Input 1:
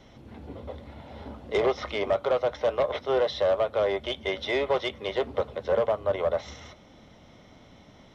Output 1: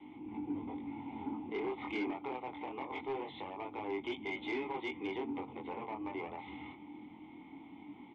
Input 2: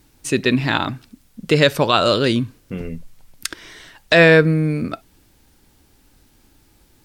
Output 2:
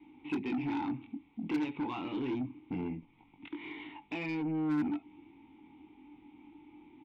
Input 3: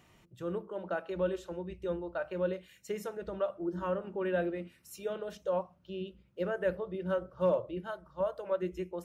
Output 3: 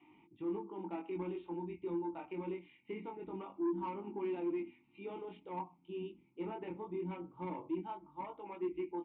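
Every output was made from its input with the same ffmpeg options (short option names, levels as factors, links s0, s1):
-filter_complex "[0:a]acompressor=threshold=0.0447:ratio=5,flanger=delay=19.5:depth=4.3:speed=0.23,asoftclip=type=tanh:threshold=0.0299,aresample=8000,aresample=44100,adynamicequalizer=threshold=0.00158:dfrequency=110:dqfactor=1.7:tfrequency=110:tqfactor=1.7:attack=5:release=100:ratio=0.375:range=2.5:mode=boostabove:tftype=bell,asplit=3[s0][s1][s2];[s0]bandpass=f=300:t=q:w=8,volume=1[s3];[s1]bandpass=f=870:t=q:w=8,volume=0.501[s4];[s2]bandpass=f=2240:t=q:w=8,volume=0.355[s5];[s3][s4][s5]amix=inputs=3:normalize=0,aeval=exprs='0.0168*(cos(1*acos(clip(val(0)/0.0168,-1,1)))-cos(1*PI/2))+0.00266*(cos(5*acos(clip(val(0)/0.0168,-1,1)))-cos(5*PI/2))':c=same,volume=3.16"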